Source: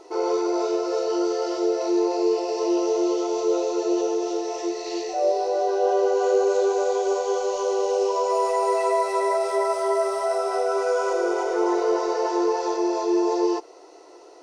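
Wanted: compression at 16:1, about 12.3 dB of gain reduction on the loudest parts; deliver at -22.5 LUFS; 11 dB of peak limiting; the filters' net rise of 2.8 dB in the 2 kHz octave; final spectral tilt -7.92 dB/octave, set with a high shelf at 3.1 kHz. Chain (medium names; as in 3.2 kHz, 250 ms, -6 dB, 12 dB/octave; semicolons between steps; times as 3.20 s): peaking EQ 2 kHz +5.5 dB; treble shelf 3.1 kHz -5.5 dB; compression 16:1, threshold -29 dBFS; trim +17.5 dB; peak limiter -15 dBFS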